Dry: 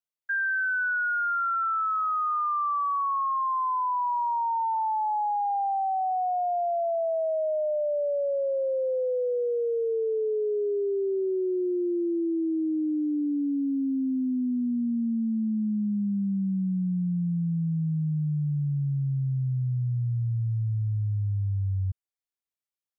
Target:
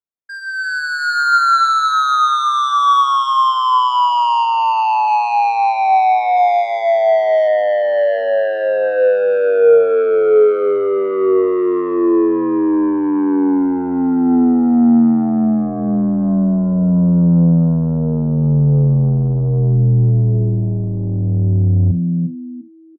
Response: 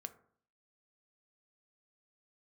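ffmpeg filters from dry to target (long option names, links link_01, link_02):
-filter_complex "[0:a]adynamicsmooth=sensitivity=4:basefreq=1300,asplit=3[link_01][link_02][link_03];[link_01]afade=type=out:start_time=4.45:duration=0.02[link_04];[link_02]aemphasis=mode=reproduction:type=riaa,afade=type=in:start_time=4.45:duration=0.02,afade=type=out:start_time=5.06:duration=0.02[link_05];[link_03]afade=type=in:start_time=5.06:duration=0.02[link_06];[link_04][link_05][link_06]amix=inputs=3:normalize=0,asplit=3[link_07][link_08][link_09];[link_07]afade=type=out:start_time=6.36:duration=0.02[link_10];[link_08]highpass=420,afade=type=in:start_time=6.36:duration=0.02,afade=type=out:start_time=7.47:duration=0.02[link_11];[link_09]afade=type=in:start_time=7.47:duration=0.02[link_12];[link_10][link_11][link_12]amix=inputs=3:normalize=0,asplit=4[link_13][link_14][link_15][link_16];[link_14]adelay=346,afreqshift=76,volume=-9.5dB[link_17];[link_15]adelay=692,afreqshift=152,volume=-20dB[link_18];[link_16]adelay=1038,afreqshift=228,volume=-30.4dB[link_19];[link_13][link_17][link_18][link_19]amix=inputs=4:normalize=0,asoftclip=type=tanh:threshold=-27dB,dynaudnorm=framelen=190:gausssize=9:maxgain=16dB[link_20];[1:a]atrim=start_sample=2205,atrim=end_sample=3969[link_21];[link_20][link_21]afir=irnorm=-1:irlink=0,volume=4.5dB"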